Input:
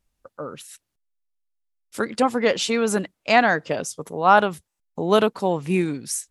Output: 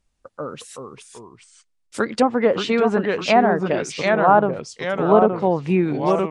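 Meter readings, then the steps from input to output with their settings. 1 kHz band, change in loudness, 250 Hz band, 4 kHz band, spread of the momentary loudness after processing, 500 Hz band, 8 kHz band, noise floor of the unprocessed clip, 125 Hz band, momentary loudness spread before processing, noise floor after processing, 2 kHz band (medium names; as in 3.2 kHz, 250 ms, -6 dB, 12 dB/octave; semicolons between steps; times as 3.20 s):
+2.0 dB, +2.5 dB, +4.0 dB, -1.5 dB, 18 LU, +4.5 dB, -7.0 dB, -80 dBFS, +4.5 dB, 19 LU, -68 dBFS, -1.5 dB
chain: ever faster or slower copies 330 ms, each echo -2 st, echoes 2, each echo -6 dB; resampled via 22.05 kHz; low-pass that closes with the level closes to 960 Hz, closed at -14 dBFS; trim +3 dB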